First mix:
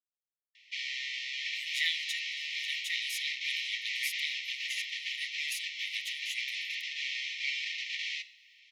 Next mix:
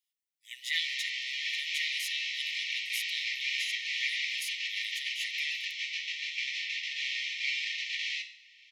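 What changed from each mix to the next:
speech: entry −1.10 s
background: send +8.0 dB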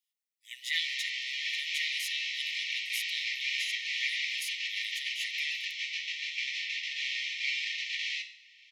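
nothing changed

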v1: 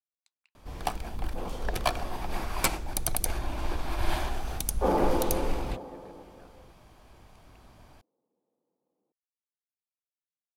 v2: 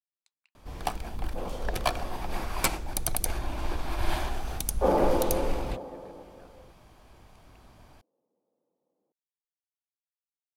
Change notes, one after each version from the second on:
second sound: add parametric band 580 Hz +5.5 dB 0.39 octaves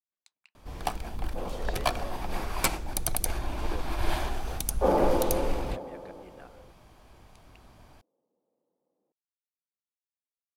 speech +8.5 dB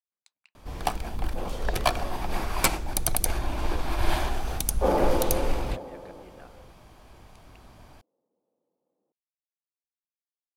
first sound +3.5 dB

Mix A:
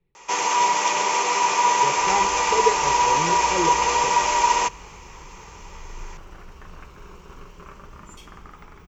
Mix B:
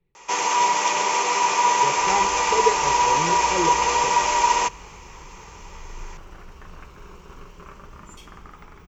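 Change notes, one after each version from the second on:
nothing changed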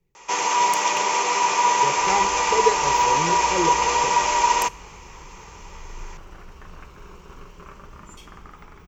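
speech: remove elliptic low-pass filter 4,100 Hz

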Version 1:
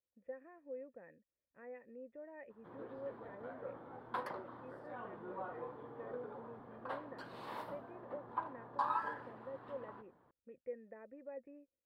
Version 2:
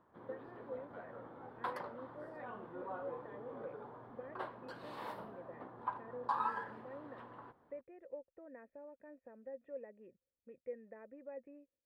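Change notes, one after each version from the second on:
background: entry −2.50 s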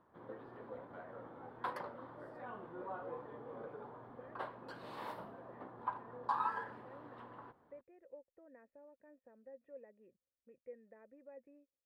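speech −6.5 dB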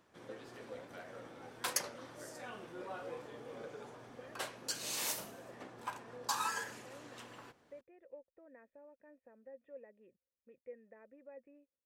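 background: add graphic EQ with 15 bands 1,000 Hz −7 dB, 2,500 Hz +10 dB, 6,300 Hz +10 dB
master: remove high-frequency loss of the air 450 metres

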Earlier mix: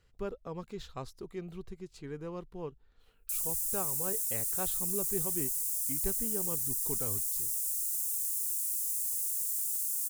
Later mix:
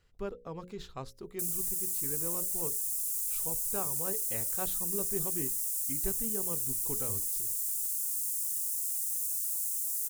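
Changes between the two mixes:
background: entry −1.90 s
master: add mains-hum notches 60/120/180/240/300/360/420/480/540 Hz

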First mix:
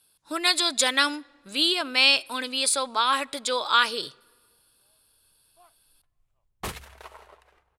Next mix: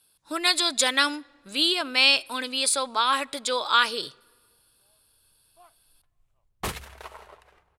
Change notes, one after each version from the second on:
background: send +9.0 dB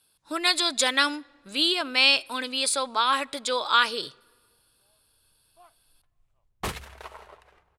master: add high-shelf EQ 8,400 Hz −5 dB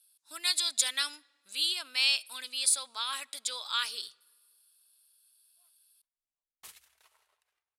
background −10.5 dB
master: add first-order pre-emphasis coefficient 0.97

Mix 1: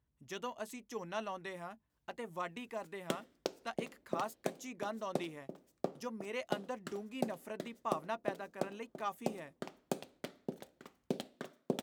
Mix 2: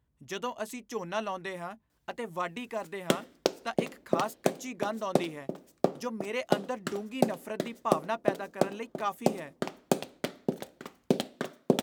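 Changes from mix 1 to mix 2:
speech +7.0 dB
background +11.0 dB

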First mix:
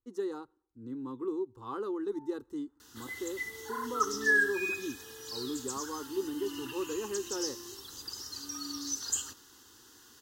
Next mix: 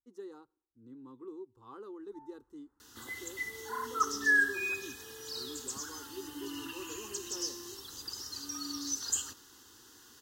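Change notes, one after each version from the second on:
speech −11.0 dB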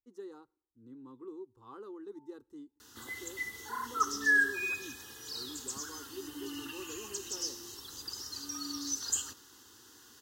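first sound: add formant resonators in series u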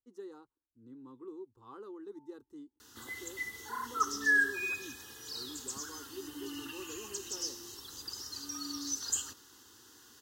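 reverb: off

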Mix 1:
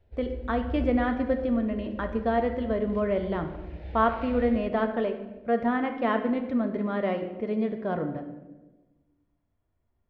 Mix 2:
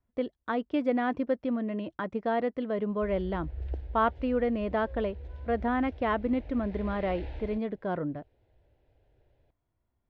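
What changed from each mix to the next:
background: entry +2.90 s
reverb: off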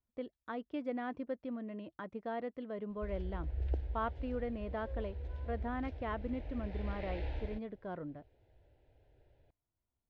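speech −11.0 dB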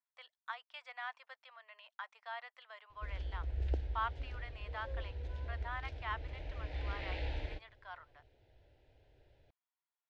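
speech: add Butterworth high-pass 830 Hz 36 dB per octave
master: add high-shelf EQ 2,200 Hz +10 dB

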